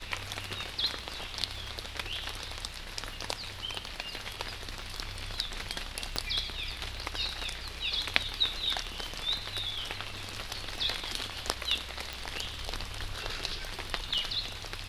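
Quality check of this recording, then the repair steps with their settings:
surface crackle 40 per second −44 dBFS
0:06.16: click −14 dBFS
0:12.13: click −20 dBFS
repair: click removal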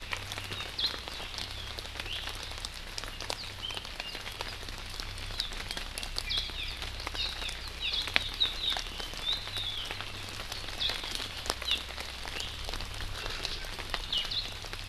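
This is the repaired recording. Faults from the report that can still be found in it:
none of them is left

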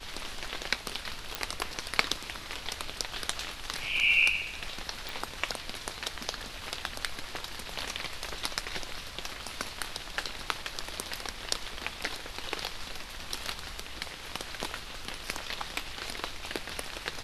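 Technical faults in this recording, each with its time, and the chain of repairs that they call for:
0:01.35: click −12 dBFS
0:05.09: click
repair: click removal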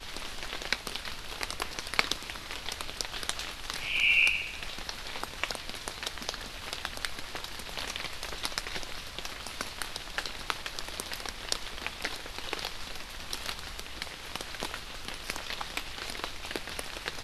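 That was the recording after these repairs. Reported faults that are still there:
none of them is left

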